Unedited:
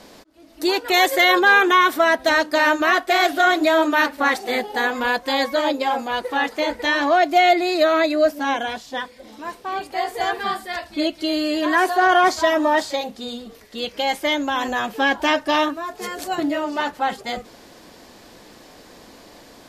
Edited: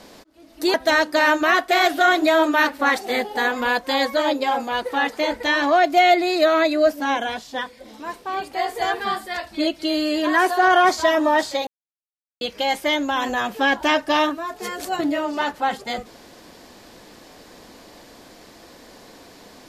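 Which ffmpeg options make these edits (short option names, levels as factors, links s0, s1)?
-filter_complex "[0:a]asplit=4[s0][s1][s2][s3];[s0]atrim=end=0.742[s4];[s1]atrim=start=2.128:end=13.06,asetpts=PTS-STARTPTS,afade=t=out:st=10.928:d=0.004:c=hsin[s5];[s2]atrim=start=13.06:end=13.8,asetpts=PTS-STARTPTS,volume=0[s6];[s3]atrim=start=13.8,asetpts=PTS-STARTPTS,afade=t=in:d=0.004:c=hsin[s7];[s5][s6][s7]concat=n=3:v=0:a=1[s8];[s4][s8]acrossfade=d=0.004:c1=hsin:c2=hsin"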